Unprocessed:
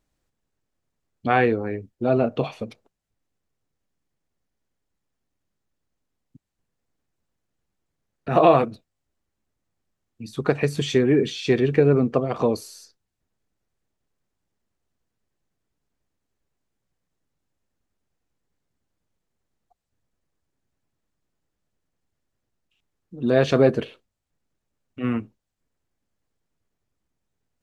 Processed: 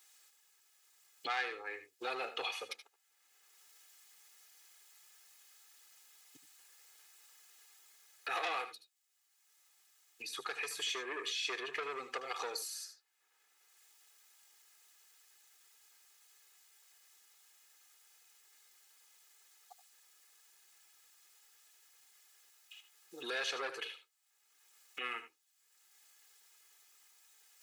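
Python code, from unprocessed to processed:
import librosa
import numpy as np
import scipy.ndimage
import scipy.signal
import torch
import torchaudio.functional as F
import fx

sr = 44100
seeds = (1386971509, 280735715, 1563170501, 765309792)

y = fx.high_shelf(x, sr, hz=5000.0, db=8.5)
y = y + 0.78 * np.pad(y, (int(2.4 * sr / 1000.0), 0))[:len(y)]
y = 10.0 ** (-12.5 / 20.0) * np.tanh(y / 10.0 ** (-12.5 / 20.0))
y = scipy.signal.sosfilt(scipy.signal.butter(2, 1400.0, 'highpass', fs=sr, output='sos'), y)
y = fx.rider(y, sr, range_db=10, speed_s=2.0)
y = fx.echo_multitap(y, sr, ms=(76, 89), db=(-13.5, -19.0))
y = fx.band_squash(y, sr, depth_pct=70)
y = y * librosa.db_to_amplitude(-6.0)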